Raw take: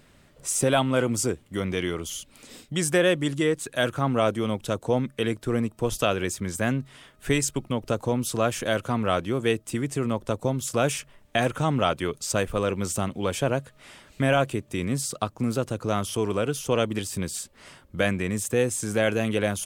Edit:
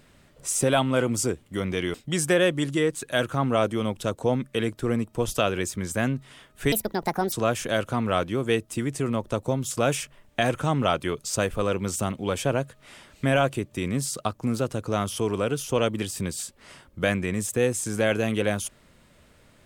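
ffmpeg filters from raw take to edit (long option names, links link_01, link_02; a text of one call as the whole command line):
ffmpeg -i in.wav -filter_complex "[0:a]asplit=4[link_01][link_02][link_03][link_04];[link_01]atrim=end=1.942[link_05];[link_02]atrim=start=2.578:end=7.364[link_06];[link_03]atrim=start=7.36:end=8.29,asetpts=PTS-STARTPTS,asetrate=67914,aresample=44100[link_07];[link_04]atrim=start=8.286[link_08];[link_05][link_06]acrossfade=duration=0.004:curve1=hsin:curve2=hsin[link_09];[link_09][link_07]acrossfade=duration=0.004:curve1=hsin:curve2=hsin[link_10];[link_10][link_08]acrossfade=duration=0.004:curve1=hsin:curve2=hsin" out.wav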